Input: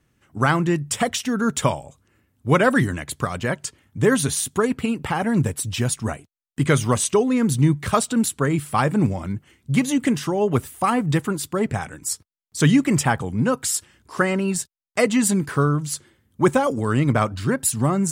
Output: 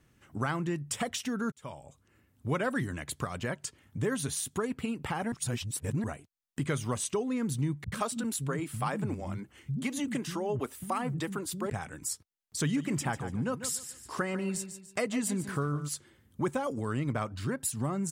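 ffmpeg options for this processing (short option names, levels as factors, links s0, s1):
-filter_complex "[0:a]asettb=1/sr,asplit=3[s0][s1][s2];[s0]atrim=end=7.844[s3];[s1]atrim=start=7.84:end=11.7,asetpts=PTS-STARTPTS,afade=t=in:d=0.004:c=qsin,afade=t=out:st=3.856:d=0.004:c=qsin,acrossover=split=210[s4][s5];[s5]adelay=80[s6];[s4][s6]amix=inputs=2:normalize=0,atrim=end_sample=170226[s7];[s2]atrim=start=11.696[s8];[s3][s7]acrossfade=d=0.004:c1=hsin:c2=qsin[s9];[s9][s8]acrossfade=d=0.004:c1=qsin:c2=hsin,asplit=3[s10][s11][s12];[s10]afade=t=out:st=12.72:d=0.02[s13];[s11]aecho=1:1:145|290|435:0.224|0.0515|0.0118,afade=t=in:st=12.72:d=0.02,afade=t=out:st=15.87:d=0.02[s14];[s12]afade=t=in:st=15.87:d=0.02[s15];[s13][s14][s15]amix=inputs=3:normalize=0,asplit=4[s16][s17][s18][s19];[s16]atrim=end=1.52,asetpts=PTS-STARTPTS,afade=t=out:st=1.516:d=0.004:c=hsin[s20];[s17]atrim=start=1.52:end=5.322,asetpts=PTS-STARTPTS,afade=t=in:d=0.97[s21];[s18]atrim=start=5.318:end=6.042,asetpts=PTS-STARTPTS,areverse[s22];[s19]atrim=start=6.038[s23];[s20][s21]concat=n=2:v=0:a=1[s24];[s24][s22]acrossfade=d=0.004:c1=hsin:c2=hsin[s25];[s25][s23]acrossfade=d=0.004:c1=hsin:c2=hsin,acompressor=threshold=0.0112:ratio=2"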